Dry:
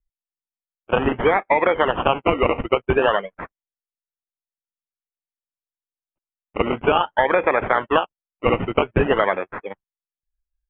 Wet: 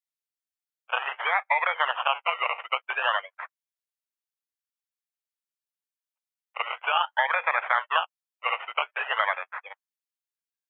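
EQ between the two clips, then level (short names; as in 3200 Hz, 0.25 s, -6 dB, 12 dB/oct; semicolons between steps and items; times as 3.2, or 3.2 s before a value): Bessel high-pass 1200 Hz, order 8; 0.0 dB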